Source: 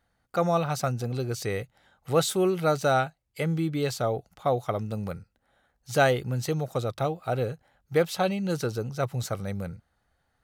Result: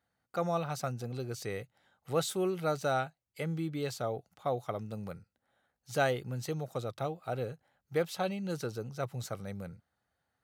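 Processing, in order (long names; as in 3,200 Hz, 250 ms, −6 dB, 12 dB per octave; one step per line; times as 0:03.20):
high-pass filter 93 Hz
level −7.5 dB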